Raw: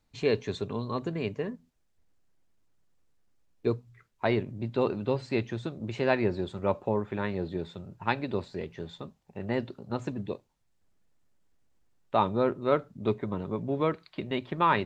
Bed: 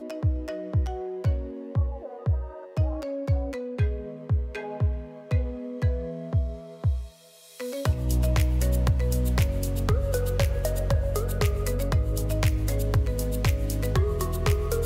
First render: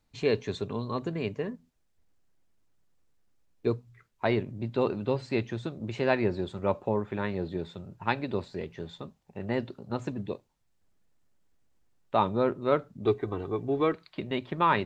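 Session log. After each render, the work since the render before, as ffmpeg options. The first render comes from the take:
-filter_complex "[0:a]asettb=1/sr,asplit=3[a][b][c];[a]atrim=end=13.054[d];[b]atrim=start=13.05:end=13.93,asetpts=PTS-STARTPTS,afade=t=in:d=0.004:c=qsin,afade=t=out:st=0.876:d=0.004:c=qsin,aecho=1:1:2.6:0.65,atrim=end_sample=38808[e];[c]atrim=start=13.926[f];[d][e]acrossfade=d=0.004:c1=hsin:c2=qsin[g];[g][f]acrossfade=d=0.004:c1=qsin:c2=hsin"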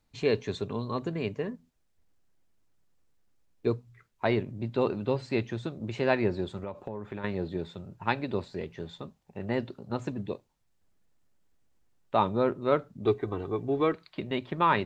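-filter_complex "[0:a]asettb=1/sr,asplit=3[a][b][c];[a]atrim=end=6.574[d];[b]atrim=start=6.57:end=7.24,asetpts=PTS-STARTPTS,afade=t=in:d=0.004:c=qsin,afade=t=out:st=0.666:d=0.004:c=qsin,acompressor=threshold=-32dB:ratio=10:attack=3.2:release=140:knee=1:detection=peak[e];[c]atrim=start=7.236[f];[d][e]acrossfade=d=0.004:c1=hsin:c2=qsin[g];[g][f]acrossfade=d=0.004:c1=qsin:c2=hsin"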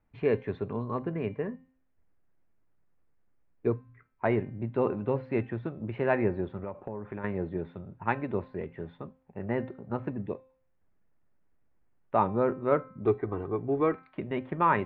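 -af "lowpass=f=2.2k:w=0.5412,lowpass=f=2.2k:w=1.3066,bandreject=f=261:t=h:w=4,bandreject=f=522:t=h:w=4,bandreject=f=783:t=h:w=4,bandreject=f=1.044k:t=h:w=4,bandreject=f=1.305k:t=h:w=4,bandreject=f=1.566k:t=h:w=4,bandreject=f=1.827k:t=h:w=4,bandreject=f=2.088k:t=h:w=4,bandreject=f=2.349k:t=h:w=4,bandreject=f=2.61k:t=h:w=4,bandreject=f=2.871k:t=h:w=4,bandreject=f=3.132k:t=h:w=4,bandreject=f=3.393k:t=h:w=4,bandreject=f=3.654k:t=h:w=4,bandreject=f=3.915k:t=h:w=4,bandreject=f=4.176k:t=h:w=4,bandreject=f=4.437k:t=h:w=4,bandreject=f=4.698k:t=h:w=4,bandreject=f=4.959k:t=h:w=4,bandreject=f=5.22k:t=h:w=4,bandreject=f=5.481k:t=h:w=4,bandreject=f=5.742k:t=h:w=4,bandreject=f=6.003k:t=h:w=4,bandreject=f=6.264k:t=h:w=4,bandreject=f=6.525k:t=h:w=4,bandreject=f=6.786k:t=h:w=4,bandreject=f=7.047k:t=h:w=4,bandreject=f=7.308k:t=h:w=4,bandreject=f=7.569k:t=h:w=4,bandreject=f=7.83k:t=h:w=4,bandreject=f=8.091k:t=h:w=4,bandreject=f=8.352k:t=h:w=4"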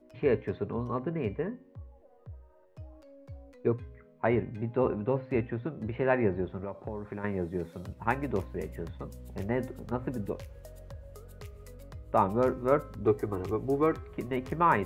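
-filter_complex "[1:a]volume=-21.5dB[a];[0:a][a]amix=inputs=2:normalize=0"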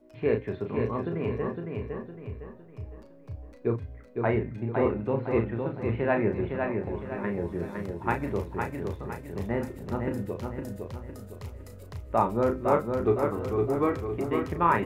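-filter_complex "[0:a]asplit=2[a][b];[b]adelay=35,volume=-6dB[c];[a][c]amix=inputs=2:normalize=0,aecho=1:1:509|1018|1527|2036|2545:0.596|0.238|0.0953|0.0381|0.0152"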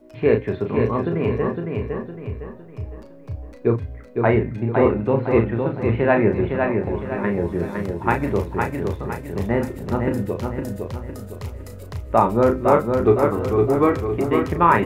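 -af "volume=8.5dB,alimiter=limit=-3dB:level=0:latency=1"

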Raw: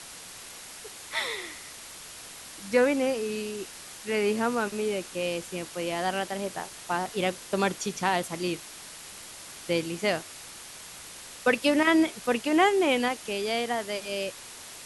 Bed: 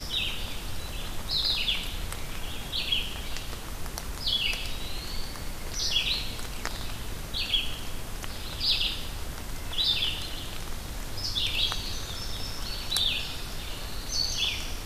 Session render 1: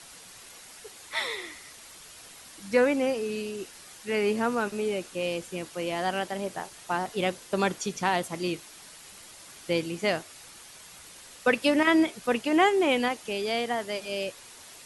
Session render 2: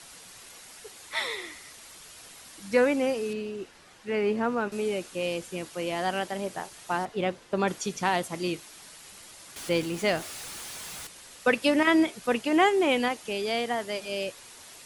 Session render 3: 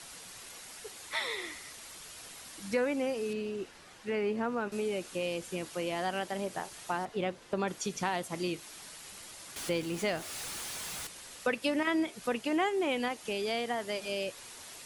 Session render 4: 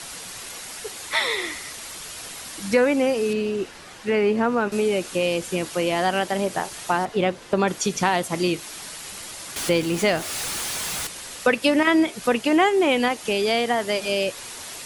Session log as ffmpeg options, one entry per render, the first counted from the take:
-af "afftdn=nr=6:nf=-45"
-filter_complex "[0:a]asettb=1/sr,asplit=3[a][b][c];[a]atrim=end=3.334[d];[b]atrim=start=3.33:end=4.72,asetpts=PTS-STARTPTS,afade=t=in:d=0.004:c=qsin,afade=t=out:st=1.386:d=0.004:c=qsin,aemphasis=mode=reproduction:type=75kf[e];[c]atrim=start=4.716[f];[d][e]acrossfade=d=0.004:c1=hsin:c2=qsin[g];[g][f]acrossfade=d=0.004:c1=qsin:c2=hsin,asettb=1/sr,asplit=3[h][i][j];[h]atrim=end=7.054[k];[i]atrim=start=7.05:end=7.68,asetpts=PTS-STARTPTS,afade=t=in:d=0.004:c=qsin,afade=t=out:st=0.626:d=0.004:c=qsin,aemphasis=mode=reproduction:type=75kf[l];[j]atrim=start=7.676[m];[k][l]acrossfade=d=0.004:c1=hsin:c2=qsin[n];[n][m]acrossfade=d=0.004:c1=qsin:c2=hsin,asettb=1/sr,asplit=3[o][p][q];[o]atrim=end=9.564[r];[p]atrim=start=9.56:end=11.07,asetpts=PTS-STARTPTS,afade=t=in:d=0.004:c=qsin,afade=t=out:st=1.506:d=0.004:c=qsin,aeval=exprs='val(0)+0.5*0.0133*sgn(val(0))':c=same[s];[q]atrim=start=11.066[t];[r][s]acrossfade=d=0.004:c1=hsin:c2=qsin[u];[u][t]acrossfade=d=0.004:c1=qsin:c2=hsin"
-af "acompressor=threshold=-33dB:ratio=2"
-af "volume=11.5dB"

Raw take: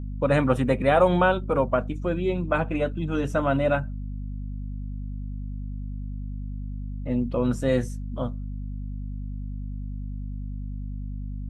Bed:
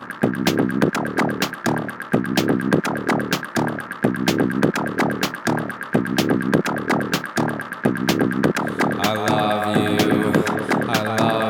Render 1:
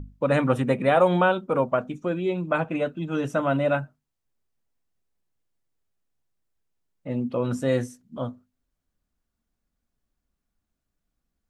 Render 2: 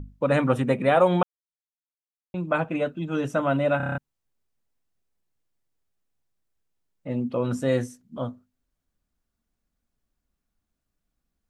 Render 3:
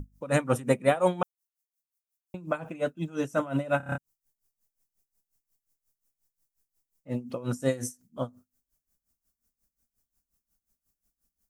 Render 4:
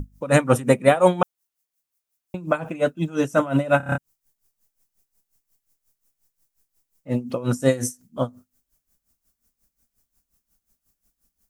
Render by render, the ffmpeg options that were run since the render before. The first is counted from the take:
-af "bandreject=f=50:t=h:w=6,bandreject=f=100:t=h:w=6,bandreject=f=150:t=h:w=6,bandreject=f=200:t=h:w=6,bandreject=f=250:t=h:w=6"
-filter_complex "[0:a]asplit=10[a][b][c][d][e][f][g][h][i][j];[a]atrim=end=1.23,asetpts=PTS-STARTPTS,afade=t=out:st=1.226:d=0.004:c=hsin[k];[b]atrim=start=1.23:end=2.34,asetpts=PTS-STARTPTS,volume=0[l];[c]atrim=start=2.34:end=3.802,asetpts=PTS-STARTPTS,afade=t=in:d=0.004:c=hsin[m];[d]atrim=start=3.768:end=3.802[n];[e]atrim=start=3.768:end=3.802[o];[f]atrim=start=3.768:end=3.802[p];[g]atrim=start=3.768:end=3.802[q];[h]atrim=start=3.768:end=3.802[r];[i]atrim=start=3.768:end=3.802[s];[j]atrim=start=3.978[t];[k][l][m]concat=n=3:v=0:a=1[u];[u][n]acrossfade=d=0.004:c1=hsin:c2=hsin[v];[v][o]acrossfade=d=0.004:c1=hsin:c2=hsin[w];[w][p]acrossfade=d=0.004:c1=hsin:c2=hsin[x];[x][q]acrossfade=d=0.004:c1=hsin:c2=hsin[y];[y][r]acrossfade=d=0.004:c1=hsin:c2=hsin[z];[z][s]acrossfade=d=0.004:c1=hsin:c2=hsin[aa];[aa][t]acrossfade=d=0.004:c1=hsin:c2=hsin"
-af "aexciter=amount=5.1:drive=3.4:freq=5.1k,aeval=exprs='val(0)*pow(10,-18*(0.5-0.5*cos(2*PI*5.6*n/s))/20)':c=same"
-af "volume=8dB,alimiter=limit=-3dB:level=0:latency=1"

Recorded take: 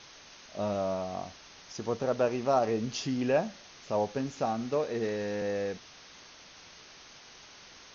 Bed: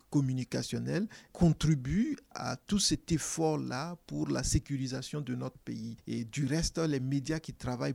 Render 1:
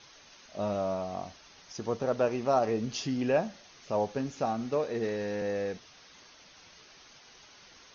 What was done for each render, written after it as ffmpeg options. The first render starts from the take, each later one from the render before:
-af "afftdn=nr=6:nf=-53"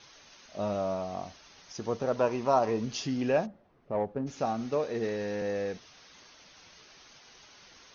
-filter_complex "[0:a]asettb=1/sr,asplit=3[a][b][c];[a]atrim=end=2.164[d];[b]atrim=start=2.16:end=2.84,asetpts=PTS-STARTPTS,afade=t=in:d=0.004:c=qsin,afade=t=out:st=0.676:d=0.004:c=qsin,equalizer=f=990:w=7.4:g=12[e];[c]atrim=start=2.836[f];[d][e]acrossfade=d=0.004:c1=hsin:c2=qsin[g];[g][f]acrossfade=d=0.004:c1=qsin:c2=hsin,asplit=3[h][i][j];[h]afade=t=out:st=3.45:d=0.02[k];[i]adynamicsmooth=sensitivity=0.5:basefreq=760,afade=t=in:st=3.45:d=0.02,afade=t=out:st=4.26:d=0.02[l];[j]afade=t=in:st=4.26:d=0.02[m];[k][l][m]amix=inputs=3:normalize=0"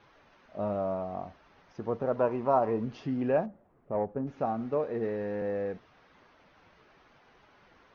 -af "lowpass=1.6k"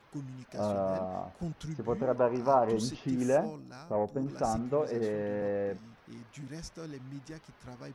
-filter_complex "[1:a]volume=-12dB[a];[0:a][a]amix=inputs=2:normalize=0"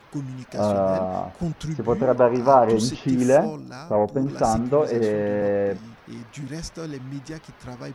-af "volume=10dB"

